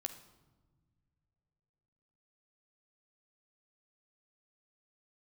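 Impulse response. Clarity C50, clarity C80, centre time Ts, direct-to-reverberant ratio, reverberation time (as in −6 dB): 10.5 dB, 13.0 dB, 12 ms, 6.0 dB, non-exponential decay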